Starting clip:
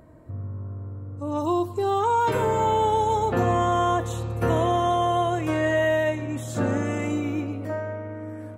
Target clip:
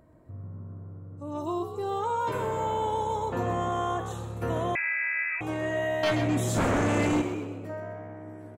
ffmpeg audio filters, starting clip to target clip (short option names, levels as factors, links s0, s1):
-filter_complex "[0:a]asettb=1/sr,asplit=3[s0][s1][s2];[s0]atrim=end=6.034[s3];[s1]atrim=start=6.03:end=7.22,asetpts=PTS-STARTPTS,afade=t=in:d=0.004:c=qsin,afade=t=out:st=1.186:d=0.004:c=qsin,aeval=exprs='0.2*sin(PI/2*2.82*val(0)/0.2)':c=same[s4];[s2]atrim=start=7.216[s5];[s3][s4]acrossfade=d=0.004:c1=hsin:c2=qsin[s6];[s6][s5]acrossfade=d=0.004:c1=qsin:c2=hsin,asplit=5[s7][s8][s9][s10][s11];[s8]adelay=128,afreqshift=67,volume=0.316[s12];[s9]adelay=256,afreqshift=134,volume=0.13[s13];[s10]adelay=384,afreqshift=201,volume=0.0531[s14];[s11]adelay=512,afreqshift=268,volume=0.0219[s15];[s7][s12][s13][s14][s15]amix=inputs=5:normalize=0,asettb=1/sr,asplit=3[s16][s17][s18];[s16]atrim=end=4.754[s19];[s17]atrim=start=4.75:end=5.41,asetpts=PTS-STARTPTS,afade=t=in:d=0.004:c=qsin,afade=t=out:st=0.656:d=0.004:c=qsin,lowpass=f=2300:t=q:w=0.5098,lowpass=f=2300:t=q:w=0.6013,lowpass=f=2300:t=q:w=0.9,lowpass=f=2300:t=q:w=2.563,afreqshift=-2700[s20];[s18]atrim=start=5.406[s21];[s19][s20]acrossfade=d=0.004:c1=hsin:c2=qsin[s22];[s22][s21]acrossfade=d=0.004:c1=qsin:c2=hsin,volume=0.422"